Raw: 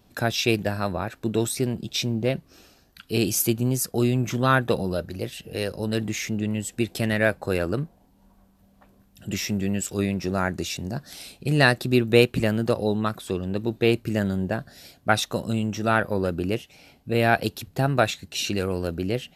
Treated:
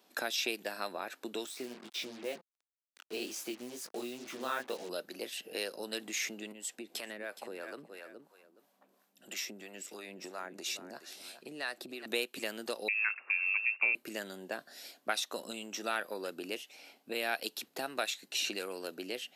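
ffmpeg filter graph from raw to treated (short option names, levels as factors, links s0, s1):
-filter_complex "[0:a]asettb=1/sr,asplit=3[s0][s1][s2];[s0]atrim=end=1.464[s3];[s1]atrim=start=1.46:end=4.89,asetpts=PTS-STARTPTS,afade=t=in:d=0.004:c=qsin,afade=t=out:st=3.426:d=0.004:c=qsin,aemphasis=mode=reproduction:type=75kf,flanger=delay=17.5:depth=7.6:speed=2.1,acrusher=bits=6:mix=0:aa=0.5[s4];[s2]atrim=start=4.886[s5];[s3][s4]acrossfade=d=0.004:c1=hsin:c2=qsin[s6];[s6][s5]acrossfade=d=0.004:c1=qsin:c2=hsin,asettb=1/sr,asplit=3[s7][s8][s9];[s7]atrim=end=6.524[s10];[s8]atrim=start=6.52:end=12.06,asetpts=PTS-STARTPTS,afade=t=in:d=0.004:c=qsin,afade=t=out:st=5.536:d=0.004:c=qsin,aecho=1:1:419|838:0.168|0.0369,atrim=end_sample=244314,acompressor=threshold=0.0398:ratio=4:attack=3.2:release=140:knee=1:detection=peak,acrossover=split=560[s11][s12];[s11]aeval=exprs='val(0)*(1-0.7/2+0.7/2*cos(2*PI*3*n/s))':c=same[s13];[s12]aeval=exprs='val(0)*(1-0.7/2-0.7/2*cos(2*PI*3*n/s))':c=same[s14];[s13][s14]amix=inputs=2:normalize=0[s15];[s9]atrim=start=12.056[s16];[s10][s15]acrossfade=d=0.004:c1=hsin:c2=qsin[s17];[s17][s16]acrossfade=d=0.004:c1=qsin:c2=hsin,asettb=1/sr,asplit=3[s18][s19][s20];[s18]atrim=end=12.884[s21];[s19]atrim=start=12.88:end=13.95,asetpts=PTS-STARTPTS,afade=t=in:d=0.004:c=qsin,afade=t=out:st=1.066:d=0.004:c=qsin,asubboost=boost=5.5:cutoff=130,acrusher=bits=9:dc=4:mix=0:aa=0.000001,lowpass=f=2400:t=q:w=0.5098,lowpass=f=2400:t=q:w=0.6013,lowpass=f=2400:t=q:w=0.9,lowpass=f=2400:t=q:w=2.563,afreqshift=-2800[s22];[s20]atrim=start=13.946[s23];[s21][s22]acrossfade=d=0.004:c1=hsin:c2=qsin[s24];[s24][s23]acrossfade=d=0.004:c1=qsin:c2=hsin,acrossover=split=2500|7600[s25][s26][s27];[s25]acompressor=threshold=0.0355:ratio=4[s28];[s26]acompressor=threshold=0.0224:ratio=4[s29];[s27]acompressor=threshold=0.00708:ratio=4[s30];[s28][s29][s30]amix=inputs=3:normalize=0,highpass=f=250:w=0.5412,highpass=f=250:w=1.3066,lowshelf=f=370:g=-9.5,volume=0.794"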